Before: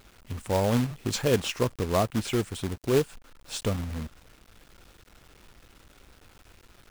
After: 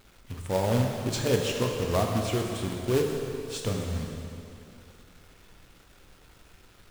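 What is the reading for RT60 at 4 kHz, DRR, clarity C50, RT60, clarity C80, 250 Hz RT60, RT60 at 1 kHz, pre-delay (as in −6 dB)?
2.5 s, 1.0 dB, 2.5 dB, 2.7 s, 3.5 dB, 2.6 s, 2.7 s, 5 ms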